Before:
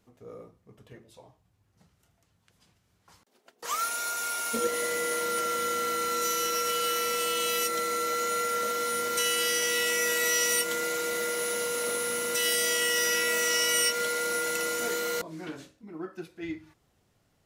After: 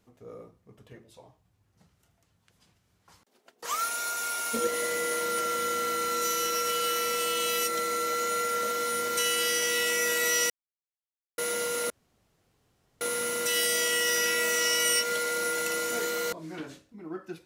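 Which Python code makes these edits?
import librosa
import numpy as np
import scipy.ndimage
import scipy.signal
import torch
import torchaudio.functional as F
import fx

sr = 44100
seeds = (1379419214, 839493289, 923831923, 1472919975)

y = fx.edit(x, sr, fx.silence(start_s=10.5, length_s=0.88),
    fx.insert_room_tone(at_s=11.9, length_s=1.11), tone=tone)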